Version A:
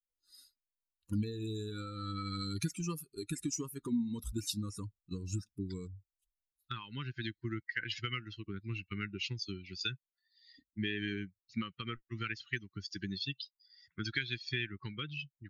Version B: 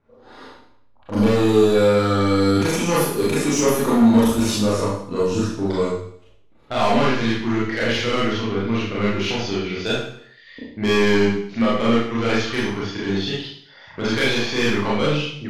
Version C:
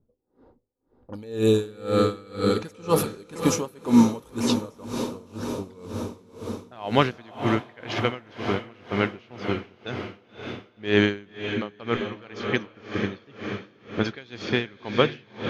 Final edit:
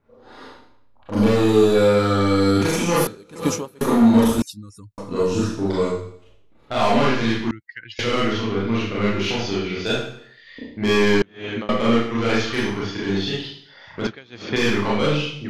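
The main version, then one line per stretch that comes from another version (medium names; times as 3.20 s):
B
3.07–3.81 s: from C
4.42–4.98 s: from A
7.51–7.99 s: from A
11.22–11.69 s: from C
14.07–14.56 s: from C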